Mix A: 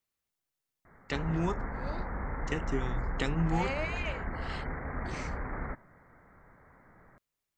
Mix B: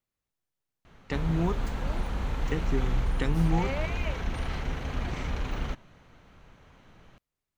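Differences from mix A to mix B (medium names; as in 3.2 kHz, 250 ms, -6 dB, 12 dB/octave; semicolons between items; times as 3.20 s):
background: remove steep low-pass 2.1 kHz 96 dB/octave; master: add tilt EQ -1.5 dB/octave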